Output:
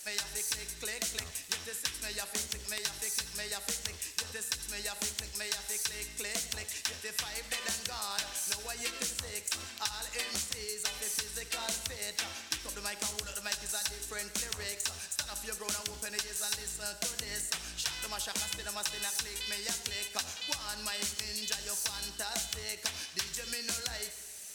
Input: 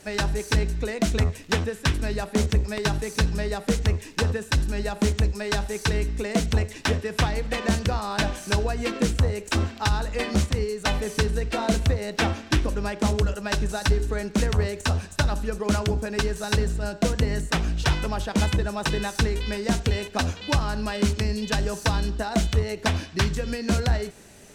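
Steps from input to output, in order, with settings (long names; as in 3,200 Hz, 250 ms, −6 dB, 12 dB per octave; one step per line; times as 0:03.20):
first-order pre-emphasis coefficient 0.97
downward compressor, threshold −39 dBFS, peak gain reduction 10.5 dB
on a send: convolution reverb RT60 1.1 s, pre-delay 68 ms, DRR 12 dB
on the sum: level +7.5 dB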